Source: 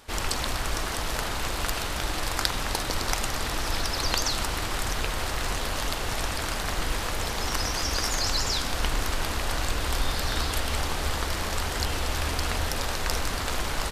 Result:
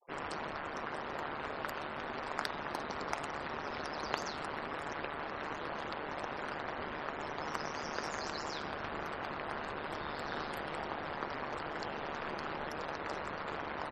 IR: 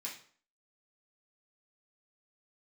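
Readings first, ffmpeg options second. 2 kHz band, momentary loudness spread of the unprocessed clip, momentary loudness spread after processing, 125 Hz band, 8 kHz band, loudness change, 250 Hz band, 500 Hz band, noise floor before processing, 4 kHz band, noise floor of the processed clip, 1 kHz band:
−9.0 dB, 4 LU, 2 LU, −18.5 dB, −24.0 dB, −11.5 dB, −8.0 dB, −6.0 dB, −31 dBFS, −18.0 dB, −42 dBFS, −6.5 dB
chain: -filter_complex "[0:a]acrossover=split=170 2100:gain=0.0631 1 0.224[link_01][link_02][link_03];[link_01][link_02][link_03]amix=inputs=3:normalize=0,afftfilt=real='re*gte(hypot(re,im),0.00708)':imag='im*gte(hypot(re,im),0.00708)':win_size=1024:overlap=0.75,aeval=exprs='val(0)*sin(2*PI*74*n/s)':channel_layout=same,volume=-3dB"

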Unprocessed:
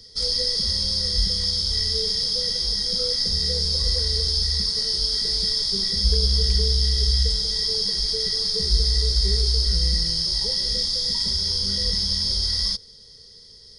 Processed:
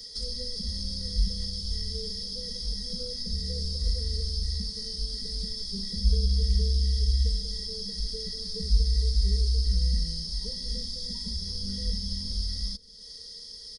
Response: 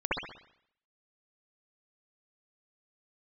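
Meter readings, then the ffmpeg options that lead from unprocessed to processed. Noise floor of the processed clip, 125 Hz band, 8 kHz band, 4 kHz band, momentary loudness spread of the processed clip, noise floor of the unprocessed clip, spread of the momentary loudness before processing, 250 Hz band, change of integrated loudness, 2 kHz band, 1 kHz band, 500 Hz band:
−44 dBFS, −2.5 dB, −11.0 dB, −12.5 dB, 7 LU, −47 dBFS, 2 LU, −1.5 dB, −9.0 dB, −15.5 dB, can't be measured, −9.5 dB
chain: -filter_complex "[0:a]highshelf=frequency=3900:gain=10.5,aecho=1:1:4.2:0.81,acrossover=split=330[link_01][link_02];[link_02]acompressor=threshold=-34dB:ratio=4[link_03];[link_01][link_03]amix=inputs=2:normalize=0,volume=-4dB"

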